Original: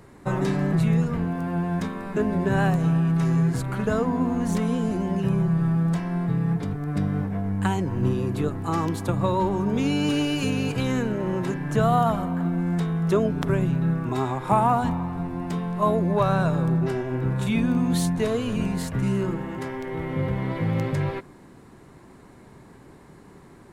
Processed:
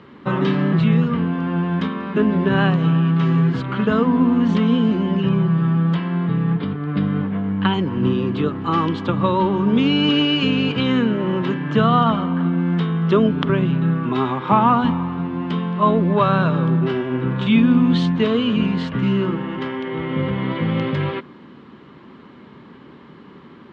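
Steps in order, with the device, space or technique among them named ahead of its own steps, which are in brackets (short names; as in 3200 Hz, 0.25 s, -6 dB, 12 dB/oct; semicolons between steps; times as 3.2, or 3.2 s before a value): 5.95–7.74 steep low-pass 5100 Hz 72 dB/oct; guitar cabinet (speaker cabinet 110–4100 Hz, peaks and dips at 110 Hz -6 dB, 230 Hz +6 dB, 710 Hz -7 dB, 1200 Hz +5 dB, 3100 Hz +10 dB); gain +5 dB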